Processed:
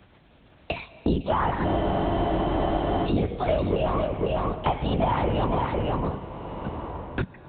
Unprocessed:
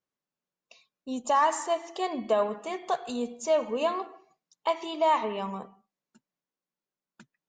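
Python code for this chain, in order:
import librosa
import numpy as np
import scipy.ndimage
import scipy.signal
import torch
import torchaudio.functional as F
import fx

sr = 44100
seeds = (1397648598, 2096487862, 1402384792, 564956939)

p1 = fx.over_compress(x, sr, threshold_db=-31.0, ratio=-1.0)
p2 = x + F.gain(torch.from_numpy(p1), -1.0).numpy()
p3 = fx.low_shelf(p2, sr, hz=480.0, db=7.0)
p4 = fx.lpc_vocoder(p3, sr, seeds[0], excitation='whisper', order=8)
p5 = scipy.signal.sosfilt(scipy.signal.butter(2, 41.0, 'highpass', fs=sr, output='sos'), p4)
p6 = fx.peak_eq(p5, sr, hz=1100.0, db=-2.5, octaves=0.77)
p7 = p6 + fx.echo_single(p6, sr, ms=503, db=-6.5, dry=0)
p8 = fx.rev_plate(p7, sr, seeds[1], rt60_s=3.0, hf_ratio=0.8, predelay_ms=0, drr_db=18.0)
p9 = fx.spec_freeze(p8, sr, seeds[2], at_s=1.67, hold_s=1.38)
p10 = fx.band_squash(p9, sr, depth_pct=100)
y = F.gain(torch.from_numpy(p10), -1.5).numpy()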